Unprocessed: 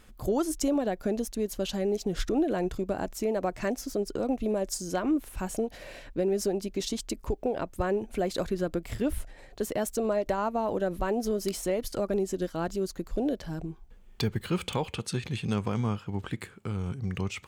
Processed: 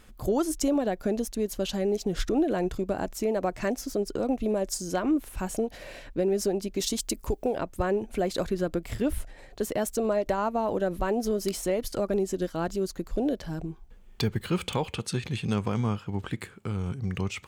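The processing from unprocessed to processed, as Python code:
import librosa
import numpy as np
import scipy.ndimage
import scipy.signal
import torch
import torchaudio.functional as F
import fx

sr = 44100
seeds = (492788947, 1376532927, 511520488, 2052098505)

y = fx.high_shelf(x, sr, hz=fx.line((6.76, 7800.0), (7.56, 5300.0)), db=10.5, at=(6.76, 7.56), fade=0.02)
y = F.gain(torch.from_numpy(y), 1.5).numpy()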